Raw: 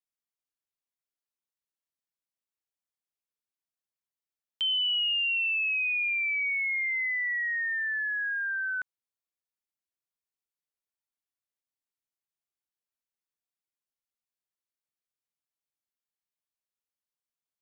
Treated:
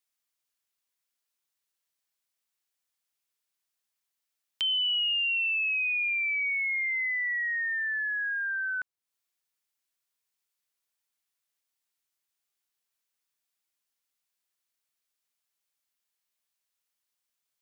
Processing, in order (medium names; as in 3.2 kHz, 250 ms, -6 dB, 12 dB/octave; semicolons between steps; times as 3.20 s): tape noise reduction on one side only encoder only